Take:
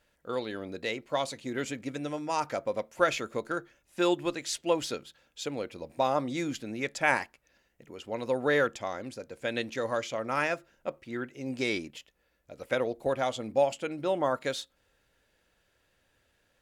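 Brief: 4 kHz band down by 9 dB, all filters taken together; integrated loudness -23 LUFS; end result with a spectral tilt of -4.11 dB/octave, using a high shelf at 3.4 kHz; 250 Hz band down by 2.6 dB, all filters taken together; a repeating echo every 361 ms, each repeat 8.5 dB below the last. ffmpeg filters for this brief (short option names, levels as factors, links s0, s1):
-af "equalizer=f=250:t=o:g=-3.5,highshelf=f=3400:g=-8.5,equalizer=f=4000:t=o:g=-5.5,aecho=1:1:361|722|1083|1444:0.376|0.143|0.0543|0.0206,volume=3.16"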